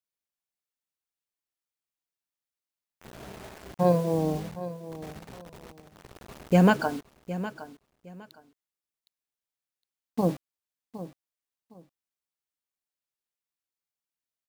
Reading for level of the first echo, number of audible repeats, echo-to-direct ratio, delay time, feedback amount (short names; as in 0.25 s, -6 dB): -14.0 dB, 2, -14.0 dB, 0.762 s, 22%